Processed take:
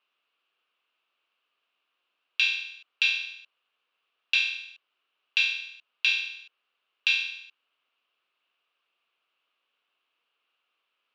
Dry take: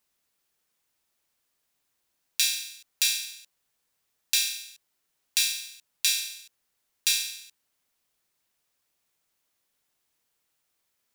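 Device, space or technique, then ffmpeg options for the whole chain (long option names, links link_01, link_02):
phone earpiece: -af "highpass=500,equalizer=frequency=600:width_type=q:width=4:gain=-3,equalizer=frequency=850:width_type=q:width=4:gain=-6,equalizer=frequency=1200:width_type=q:width=4:gain=5,equalizer=frequency=1900:width_type=q:width=4:gain=-8,equalizer=frequency=2800:width_type=q:width=4:gain=9,lowpass=frequency=3200:width=0.5412,lowpass=frequency=3200:width=1.3066,volume=4.5dB"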